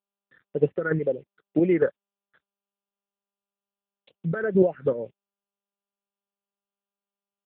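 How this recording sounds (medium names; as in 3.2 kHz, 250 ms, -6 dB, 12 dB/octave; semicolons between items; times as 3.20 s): chopped level 3.3 Hz, depth 60%, duty 25%; a quantiser's noise floor 10-bit, dither none; phasing stages 6, 2 Hz, lowest notch 700–1400 Hz; AMR-NB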